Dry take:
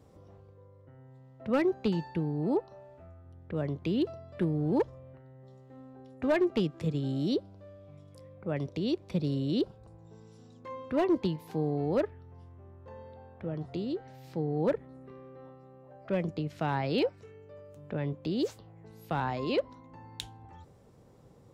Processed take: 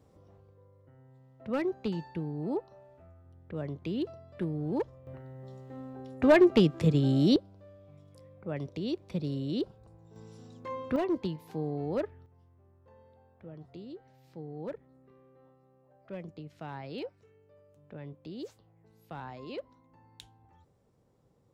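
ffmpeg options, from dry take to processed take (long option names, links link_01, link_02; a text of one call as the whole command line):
ffmpeg -i in.wav -af "asetnsamples=nb_out_samples=441:pad=0,asendcmd='5.07 volume volume 6.5dB;7.36 volume volume -3dB;10.16 volume volume 3.5dB;10.96 volume volume -3.5dB;12.26 volume volume -11dB',volume=-4dB" out.wav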